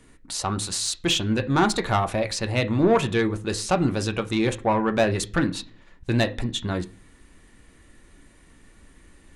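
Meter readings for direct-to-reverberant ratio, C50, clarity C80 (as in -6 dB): 6.5 dB, 18.0 dB, 24.0 dB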